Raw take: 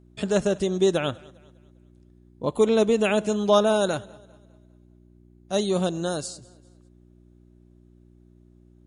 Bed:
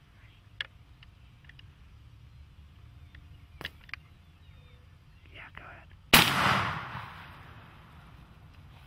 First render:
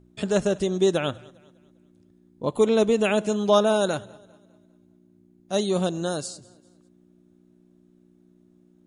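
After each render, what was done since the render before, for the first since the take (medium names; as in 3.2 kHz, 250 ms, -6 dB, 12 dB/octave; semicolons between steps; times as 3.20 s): de-hum 60 Hz, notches 2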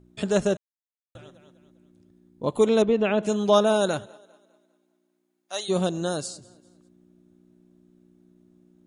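0.57–1.15 s: mute; 2.82–3.23 s: distance through air 250 m; 4.05–5.68 s: high-pass 300 Hz -> 1 kHz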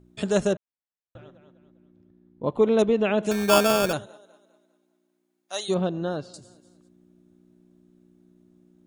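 0.53–2.79 s: Bessel low-pass 2.1 kHz; 3.31–3.93 s: sample-rate reducer 2 kHz; 5.74–6.34 s: distance through air 320 m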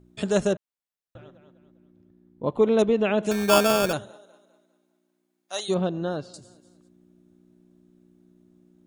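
4.00–5.60 s: doubling 49 ms -11 dB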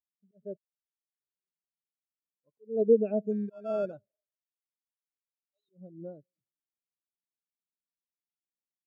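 slow attack 301 ms; spectral contrast expander 2.5:1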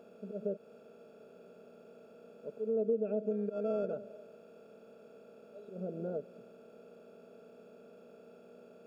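spectral levelling over time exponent 0.4; compression 2.5:1, threshold -34 dBFS, peak gain reduction 12.5 dB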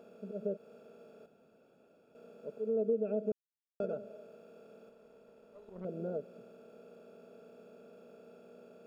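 1.26–2.15 s: room tone; 3.32–3.80 s: mute; 4.89–5.85 s: valve stage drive 39 dB, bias 0.75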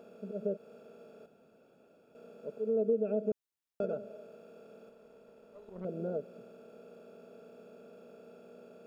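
trim +2 dB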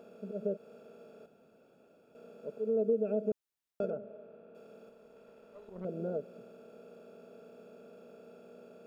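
3.90–4.55 s: distance through air 460 m; 5.16–5.68 s: peaking EQ 1.9 kHz +3.5 dB 2.1 oct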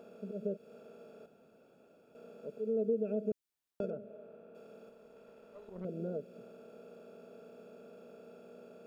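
dynamic bell 930 Hz, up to -8 dB, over -50 dBFS, Q 0.87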